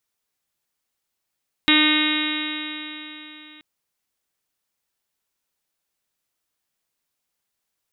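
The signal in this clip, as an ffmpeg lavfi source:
ffmpeg -f lavfi -i "aevalsrc='0.133*pow(10,-3*t/3.61)*sin(2*PI*303.1*t)+0.015*pow(10,-3*t/3.61)*sin(2*PI*606.81*t)+0.0266*pow(10,-3*t/3.61)*sin(2*PI*911.74*t)+0.0447*pow(10,-3*t/3.61)*sin(2*PI*1218.48*t)+0.0447*pow(10,-3*t/3.61)*sin(2*PI*1527.64*t)+0.0708*pow(10,-3*t/3.61)*sin(2*PI*1839.79*t)+0.0944*pow(10,-3*t/3.61)*sin(2*PI*2155.54*t)+0.0668*pow(10,-3*t/3.61)*sin(2*PI*2475.43*t)+0.075*pow(10,-3*t/3.61)*sin(2*PI*2800.02*t)+0.0562*pow(10,-3*t/3.61)*sin(2*PI*3129.86*t)+0.0631*pow(10,-3*t/3.61)*sin(2*PI*3465.47*t)+0.133*pow(10,-3*t/3.61)*sin(2*PI*3807.36*t)':duration=1.93:sample_rate=44100" out.wav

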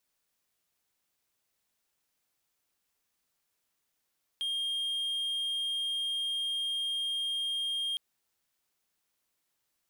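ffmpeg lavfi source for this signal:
ffmpeg -f lavfi -i "aevalsrc='0.0398*(1-4*abs(mod(3220*t+0.25,1)-0.5))':duration=3.56:sample_rate=44100" out.wav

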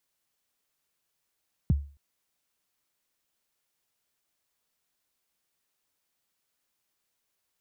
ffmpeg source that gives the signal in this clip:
ffmpeg -f lavfi -i "aevalsrc='0.158*pow(10,-3*t/0.37)*sin(2*PI*(210*0.022/log(71/210)*(exp(log(71/210)*min(t,0.022)/0.022)-1)+71*max(t-0.022,0)))':duration=0.27:sample_rate=44100" out.wav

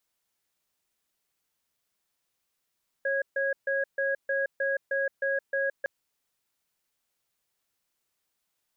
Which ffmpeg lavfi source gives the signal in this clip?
ffmpeg -f lavfi -i "aevalsrc='0.0422*(sin(2*PI*548*t)+sin(2*PI*1650*t))*clip(min(mod(t,0.31),0.17-mod(t,0.31))/0.005,0,1)':duration=2.81:sample_rate=44100" out.wav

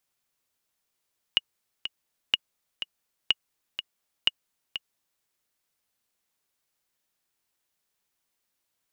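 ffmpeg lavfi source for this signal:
ffmpeg -f lavfi -i "aevalsrc='pow(10,(-7-10.5*gte(mod(t,2*60/124),60/124))/20)*sin(2*PI*2880*mod(t,60/124))*exp(-6.91*mod(t,60/124)/0.03)':duration=3.87:sample_rate=44100" out.wav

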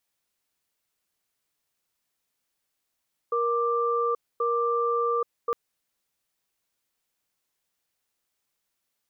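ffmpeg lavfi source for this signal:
ffmpeg -f lavfi -i "aevalsrc='0.0562*(sin(2*PI*471*t)+sin(2*PI*1180*t))*clip(min(mod(t,1.08),0.83-mod(t,1.08))/0.005,0,1)':duration=2.21:sample_rate=44100" out.wav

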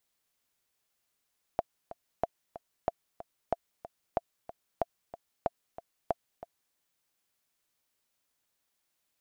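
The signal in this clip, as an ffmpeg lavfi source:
ffmpeg -f lavfi -i "aevalsrc='pow(10,(-14-15*gte(mod(t,2*60/186),60/186))/20)*sin(2*PI*683*mod(t,60/186))*exp(-6.91*mod(t,60/186)/0.03)':duration=5.16:sample_rate=44100" out.wav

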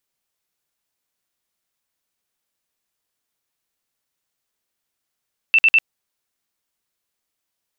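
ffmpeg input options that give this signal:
ffmpeg -f lavfi -i "aevalsrc='0.335*sin(2*PI*2670*mod(t,0.1))*lt(mod(t,0.1),122/2670)':duration=0.3:sample_rate=44100" out.wav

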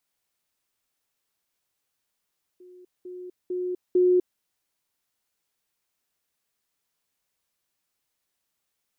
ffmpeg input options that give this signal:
ffmpeg -f lavfi -i "aevalsrc='pow(10,(-46+10*floor(t/0.45))/20)*sin(2*PI*362*t)*clip(min(mod(t,0.45),0.25-mod(t,0.45))/0.005,0,1)':duration=1.8:sample_rate=44100" out.wav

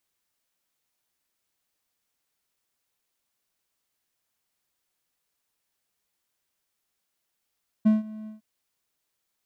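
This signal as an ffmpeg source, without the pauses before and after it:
ffmpeg -f lavfi -i "aevalsrc='0.251*(1-4*abs(mod(216*t+0.25,1)-0.5))':duration=0.558:sample_rate=44100,afade=type=in:duration=0.016,afade=type=out:start_time=0.016:duration=0.159:silence=0.0841,afade=type=out:start_time=0.42:duration=0.138" out.wav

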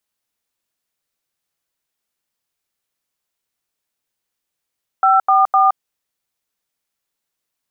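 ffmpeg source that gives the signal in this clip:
ffmpeg -f lavfi -i "aevalsrc='0.251*clip(min(mod(t,0.254),0.169-mod(t,0.254))/0.002,0,1)*(eq(floor(t/0.254),0)*(sin(2*PI*770*mod(t,0.254))+sin(2*PI*1336*mod(t,0.254)))+eq(floor(t/0.254),1)*(sin(2*PI*770*mod(t,0.254))+sin(2*PI*1209*mod(t,0.254)))+eq(floor(t/0.254),2)*(sin(2*PI*770*mod(t,0.254))+sin(2*PI*1209*mod(t,0.254))))':duration=0.762:sample_rate=44100" out.wav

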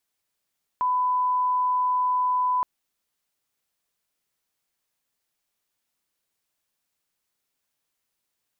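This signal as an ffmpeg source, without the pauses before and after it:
ffmpeg -f lavfi -i "sine=frequency=1000:duration=1.82:sample_rate=44100,volume=-1.94dB" out.wav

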